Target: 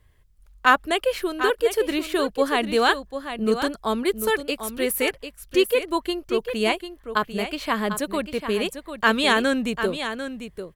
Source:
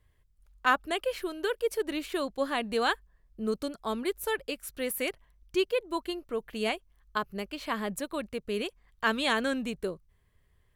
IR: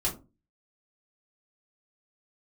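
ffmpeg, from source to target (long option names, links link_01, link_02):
-af "aecho=1:1:746:0.335,volume=8dB"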